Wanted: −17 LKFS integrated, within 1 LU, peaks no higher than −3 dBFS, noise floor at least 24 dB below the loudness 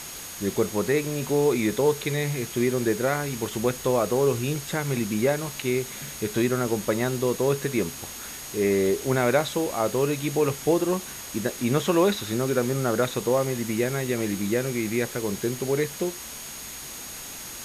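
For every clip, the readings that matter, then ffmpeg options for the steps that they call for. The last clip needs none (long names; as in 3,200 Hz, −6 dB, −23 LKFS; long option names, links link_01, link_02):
interfering tone 6,600 Hz; level of the tone −42 dBFS; background noise floor −38 dBFS; target noise floor −50 dBFS; integrated loudness −25.5 LKFS; sample peak −8.5 dBFS; target loudness −17.0 LKFS
→ -af "bandreject=frequency=6600:width=30"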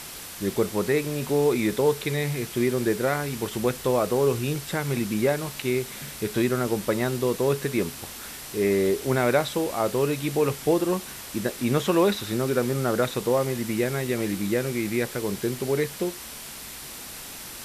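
interfering tone none found; background noise floor −39 dBFS; target noise floor −50 dBFS
→ -af "afftdn=noise_reduction=11:noise_floor=-39"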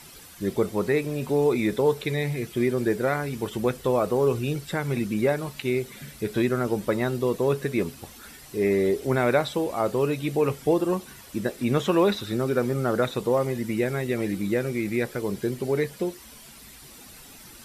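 background noise floor −47 dBFS; target noise floor −50 dBFS
→ -af "afftdn=noise_reduction=6:noise_floor=-47"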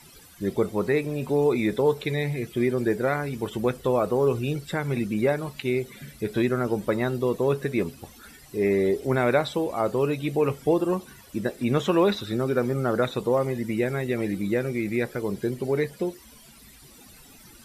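background noise floor −50 dBFS; integrated loudness −25.5 LKFS; sample peak −9.0 dBFS; target loudness −17.0 LKFS
→ -af "volume=8.5dB,alimiter=limit=-3dB:level=0:latency=1"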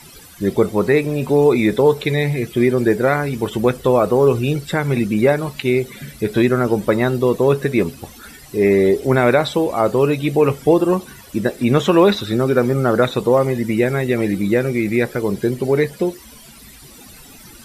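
integrated loudness −17.5 LKFS; sample peak −3.0 dBFS; background noise floor −42 dBFS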